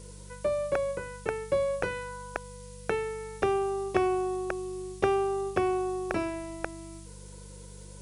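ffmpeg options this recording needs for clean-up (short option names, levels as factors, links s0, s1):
-af "adeclick=t=4,bandreject=f=49.2:t=h:w=4,bandreject=f=98.4:t=h:w=4,bandreject=f=147.6:t=h:w=4,bandreject=f=196.8:t=h:w=4,afftdn=nr=30:nf=-46"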